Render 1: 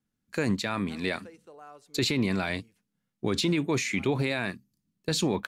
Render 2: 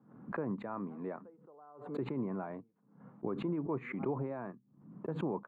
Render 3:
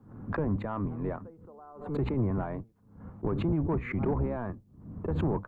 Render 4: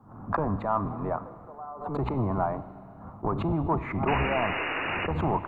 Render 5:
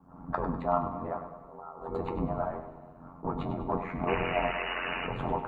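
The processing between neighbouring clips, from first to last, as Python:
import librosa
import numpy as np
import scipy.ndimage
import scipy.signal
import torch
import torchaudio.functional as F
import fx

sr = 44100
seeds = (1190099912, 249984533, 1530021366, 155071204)

y1 = scipy.signal.sosfilt(scipy.signal.ellip(3, 1.0, 60, [130.0, 1100.0], 'bandpass', fs=sr, output='sos'), x)
y1 = fx.tilt_eq(y1, sr, slope=1.5)
y1 = fx.pre_swell(y1, sr, db_per_s=88.0)
y1 = F.gain(torch.from_numpy(y1), -6.0).numpy()
y2 = fx.octave_divider(y1, sr, octaves=1, level_db=-1.0)
y2 = fx.low_shelf(y2, sr, hz=100.0, db=5.5)
y2 = 10.0 ** (-25.5 / 20.0) * np.tanh(y2 / 10.0 ** (-25.5 / 20.0))
y2 = F.gain(torch.from_numpy(y2), 6.0).numpy()
y3 = fx.band_shelf(y2, sr, hz=910.0, db=11.0, octaves=1.3)
y3 = fx.spec_paint(y3, sr, seeds[0], shape='noise', start_s=4.07, length_s=1.0, low_hz=250.0, high_hz=2900.0, level_db=-31.0)
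y3 = fx.rev_schroeder(y3, sr, rt60_s=2.5, comb_ms=32, drr_db=13.5)
y4 = fx.comb_fb(y3, sr, f0_hz=220.0, decay_s=0.16, harmonics='all', damping=0.0, mix_pct=90)
y4 = y4 * np.sin(2.0 * np.pi * 44.0 * np.arange(len(y4)) / sr)
y4 = fx.echo_feedback(y4, sr, ms=100, feedback_pct=39, wet_db=-10.0)
y4 = F.gain(torch.from_numpy(y4), 8.0).numpy()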